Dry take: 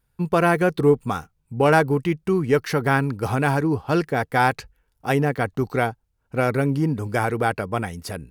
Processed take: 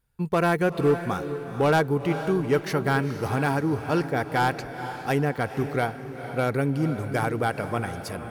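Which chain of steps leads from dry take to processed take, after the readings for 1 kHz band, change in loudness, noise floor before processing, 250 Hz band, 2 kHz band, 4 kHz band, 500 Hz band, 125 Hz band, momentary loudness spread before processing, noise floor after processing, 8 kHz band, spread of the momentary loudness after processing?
−3.5 dB, −3.5 dB, −71 dBFS, −3.0 dB, −4.0 dB, −2.0 dB, −3.5 dB, −3.0 dB, 10 LU, −38 dBFS, −3.0 dB, 8 LU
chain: hard clipping −11 dBFS, distortion −19 dB
feedback delay with all-pass diffusion 468 ms, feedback 41%, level −10 dB
level −3.5 dB

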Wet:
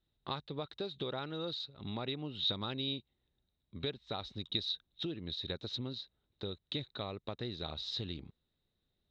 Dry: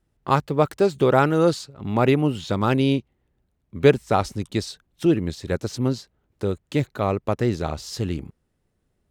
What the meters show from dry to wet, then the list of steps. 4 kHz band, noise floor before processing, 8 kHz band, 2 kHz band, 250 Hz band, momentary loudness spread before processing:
−1.0 dB, −72 dBFS, below −20 dB, −19.0 dB, −20.0 dB, 11 LU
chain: downward compressor 6 to 1, threshold −25 dBFS, peak gain reduction 14.5 dB
transistor ladder low-pass 3,900 Hz, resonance 90%
level +1 dB

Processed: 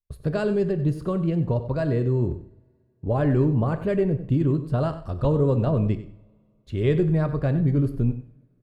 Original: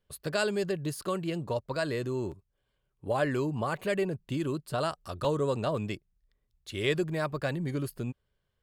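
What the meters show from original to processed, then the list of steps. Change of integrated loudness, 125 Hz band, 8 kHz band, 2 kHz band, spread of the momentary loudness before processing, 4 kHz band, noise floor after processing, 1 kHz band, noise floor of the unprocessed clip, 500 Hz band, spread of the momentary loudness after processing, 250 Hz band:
+8.0 dB, +13.5 dB, below −10 dB, −3.0 dB, 10 LU, can't be measured, −64 dBFS, +1.0 dB, −78 dBFS, +5.5 dB, 7 LU, +9.5 dB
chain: downward expander −56 dBFS
spectral tilt −4.5 dB per octave
on a send: single-tap delay 95 ms −14 dB
on the sum: coupled-rooms reverb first 0.61 s, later 2.7 s, from −25 dB, DRR 10 dB

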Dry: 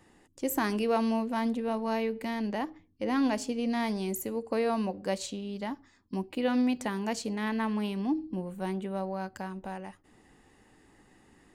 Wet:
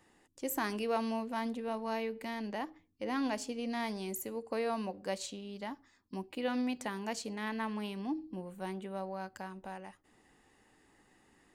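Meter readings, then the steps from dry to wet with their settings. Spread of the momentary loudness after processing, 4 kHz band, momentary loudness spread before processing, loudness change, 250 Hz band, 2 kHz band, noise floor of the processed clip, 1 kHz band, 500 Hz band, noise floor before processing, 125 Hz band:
11 LU, −3.5 dB, 11 LU, −6.5 dB, −7.5 dB, −3.5 dB, −68 dBFS, −4.5 dB, −5.5 dB, −63 dBFS, −8.0 dB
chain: low-shelf EQ 370 Hz −6 dB
level −3.5 dB

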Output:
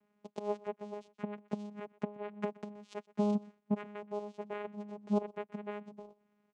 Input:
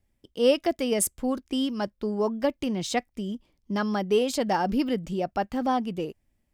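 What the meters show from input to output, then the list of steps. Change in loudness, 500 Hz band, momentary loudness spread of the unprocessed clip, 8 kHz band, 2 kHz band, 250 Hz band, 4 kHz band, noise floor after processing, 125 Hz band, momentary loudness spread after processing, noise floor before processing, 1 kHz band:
−12.5 dB, −13.0 dB, 11 LU, below −30 dB, −15.5 dB, −10.5 dB, −25.5 dB, −77 dBFS, −7.5 dB, 12 LU, −74 dBFS, −14.5 dB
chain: three-way crossover with the lows and the highs turned down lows −13 dB, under 530 Hz, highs −16 dB, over 2,200 Hz
gate with flip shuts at −33 dBFS, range −24 dB
comb filter 7.3 ms, depth 34%
single-tap delay 124 ms −22.5 dB
channel vocoder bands 4, saw 207 Hz
level +14 dB

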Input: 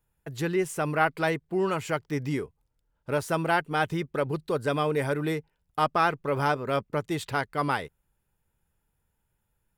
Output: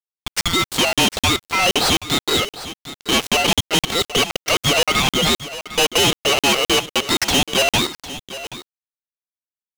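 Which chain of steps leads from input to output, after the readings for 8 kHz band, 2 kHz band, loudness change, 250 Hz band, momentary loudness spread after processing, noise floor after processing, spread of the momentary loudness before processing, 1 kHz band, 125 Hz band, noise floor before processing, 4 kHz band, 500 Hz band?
+23.0 dB, +10.5 dB, +11.0 dB, +7.0 dB, 14 LU, below −85 dBFS, 7 LU, +5.5 dB, +4.0 dB, −77 dBFS, +25.5 dB, +5.5 dB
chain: treble cut that deepens with the level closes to 1,400 Hz, closed at −22 dBFS
Chebyshev band-pass filter 1,200–7,400 Hz, order 2
automatic gain control gain up to 8 dB
leveller curve on the samples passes 5
in parallel at +1.5 dB: brickwall limiter −18.5 dBFS, peak gain reduction 10 dB
on the sum: ring modulation 1,700 Hz
bit reduction 6 bits
gain into a clipping stage and back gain 18.5 dB
on a send: single-tap delay 753 ms −14.5 dB
on the sum: regular buffer underruns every 0.26 s, samples 2,048, zero, from 0:00.41
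level +5 dB

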